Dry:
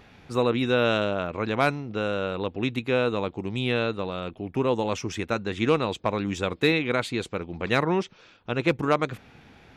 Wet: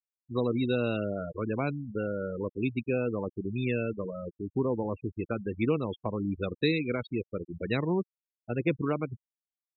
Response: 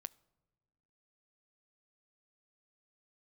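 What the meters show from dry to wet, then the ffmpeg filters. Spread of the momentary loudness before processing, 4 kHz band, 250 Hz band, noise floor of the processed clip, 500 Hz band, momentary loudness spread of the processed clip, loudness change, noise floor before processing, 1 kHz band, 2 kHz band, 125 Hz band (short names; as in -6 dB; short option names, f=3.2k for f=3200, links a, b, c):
9 LU, -11.0 dB, -3.0 dB, under -85 dBFS, -5.5 dB, 8 LU, -5.5 dB, -54 dBFS, -11.0 dB, -9.5 dB, -2.5 dB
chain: -filter_complex "[0:a]afftfilt=real='re*gte(hypot(re,im),0.0891)':imag='im*gte(hypot(re,im),0.0891)':win_size=1024:overlap=0.75,acrossover=split=430|3000[a][b][c];[b]acompressor=threshold=-34dB:ratio=4[d];[a][d][c]amix=inputs=3:normalize=0,volume=-2dB"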